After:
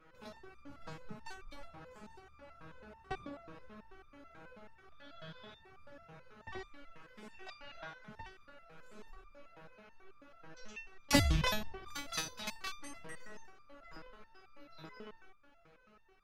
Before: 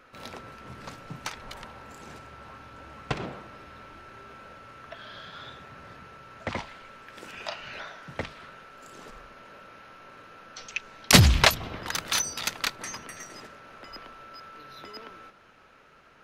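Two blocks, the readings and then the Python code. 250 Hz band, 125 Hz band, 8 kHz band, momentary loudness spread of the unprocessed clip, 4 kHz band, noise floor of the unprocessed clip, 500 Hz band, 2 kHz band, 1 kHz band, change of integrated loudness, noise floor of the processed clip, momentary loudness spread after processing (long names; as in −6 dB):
−8.0 dB, −13.5 dB, −15.5 dB, 24 LU, −14.0 dB, −56 dBFS, −9.5 dB, −13.0 dB, −11.5 dB, −13.5 dB, −64 dBFS, 20 LU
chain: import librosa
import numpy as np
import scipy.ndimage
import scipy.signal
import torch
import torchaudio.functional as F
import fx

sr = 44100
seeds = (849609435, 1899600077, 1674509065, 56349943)

y = fx.tilt_eq(x, sr, slope=-2.0)
y = fx.resonator_held(y, sr, hz=9.2, low_hz=160.0, high_hz=1200.0)
y = F.gain(torch.from_numpy(y), 5.0).numpy()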